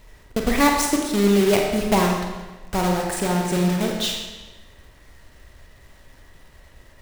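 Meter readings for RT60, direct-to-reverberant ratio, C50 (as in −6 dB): 1.2 s, 0.5 dB, 2.5 dB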